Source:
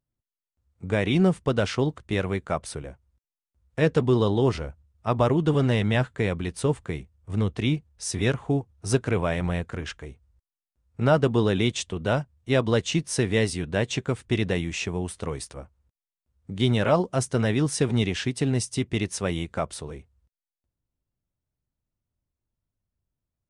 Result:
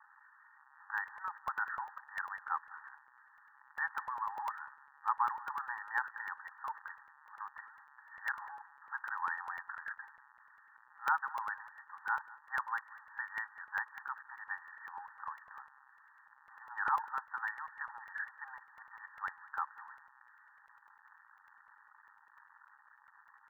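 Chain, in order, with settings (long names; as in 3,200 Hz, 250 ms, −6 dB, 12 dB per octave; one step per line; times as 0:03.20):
spike at every zero crossing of −21.5 dBFS
linear-phase brick-wall band-pass 790–1,900 Hz
on a send: single-tap delay 195 ms −20 dB
on the sum: regular buffer underruns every 0.10 s, samples 64, zero, from 0:00.98
level −2 dB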